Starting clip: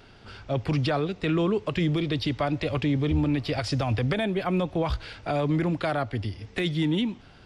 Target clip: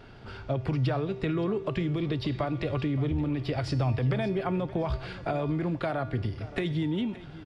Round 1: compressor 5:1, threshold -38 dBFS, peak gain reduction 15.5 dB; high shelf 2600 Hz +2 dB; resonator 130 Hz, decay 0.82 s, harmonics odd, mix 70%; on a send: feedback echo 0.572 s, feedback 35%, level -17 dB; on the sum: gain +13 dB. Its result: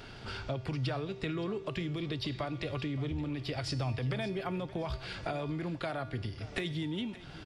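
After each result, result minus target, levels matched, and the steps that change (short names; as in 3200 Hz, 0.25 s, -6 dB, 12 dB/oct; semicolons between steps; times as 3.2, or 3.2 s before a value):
4000 Hz band +7.5 dB; compressor: peak gain reduction +7 dB
change: high shelf 2600 Hz -10 dB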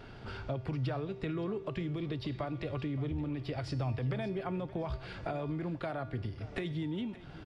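compressor: peak gain reduction +7 dB
change: compressor 5:1, threshold -29 dBFS, peak gain reduction 8 dB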